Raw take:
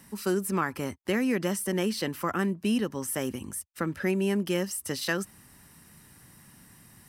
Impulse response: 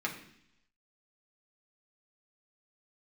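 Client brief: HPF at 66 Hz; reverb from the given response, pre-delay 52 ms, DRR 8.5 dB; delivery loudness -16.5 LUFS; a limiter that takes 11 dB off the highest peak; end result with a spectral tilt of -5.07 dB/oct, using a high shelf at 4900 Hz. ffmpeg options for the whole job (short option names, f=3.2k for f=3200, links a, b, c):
-filter_complex "[0:a]highpass=66,highshelf=f=4.9k:g=-7.5,alimiter=level_in=1dB:limit=-24dB:level=0:latency=1,volume=-1dB,asplit=2[a][b];[1:a]atrim=start_sample=2205,adelay=52[c];[b][c]afir=irnorm=-1:irlink=0,volume=-13.5dB[d];[a][d]amix=inputs=2:normalize=0,volume=17.5dB"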